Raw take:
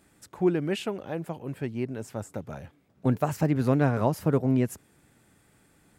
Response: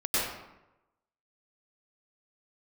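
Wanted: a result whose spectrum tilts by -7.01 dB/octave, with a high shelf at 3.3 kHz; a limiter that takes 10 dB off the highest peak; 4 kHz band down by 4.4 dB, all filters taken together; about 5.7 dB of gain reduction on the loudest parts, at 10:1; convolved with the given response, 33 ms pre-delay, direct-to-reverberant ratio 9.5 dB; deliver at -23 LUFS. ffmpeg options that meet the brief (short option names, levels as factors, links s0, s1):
-filter_complex "[0:a]highshelf=f=3300:g=-5,equalizer=f=4000:t=o:g=-3,acompressor=threshold=0.0631:ratio=10,alimiter=level_in=1.12:limit=0.0631:level=0:latency=1,volume=0.891,asplit=2[s0][s1];[1:a]atrim=start_sample=2205,adelay=33[s2];[s1][s2]afir=irnorm=-1:irlink=0,volume=0.0944[s3];[s0][s3]amix=inputs=2:normalize=0,volume=4.22"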